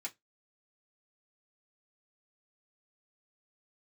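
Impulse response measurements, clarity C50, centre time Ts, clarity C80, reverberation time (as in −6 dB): 24.0 dB, 7 ms, 35.0 dB, 0.15 s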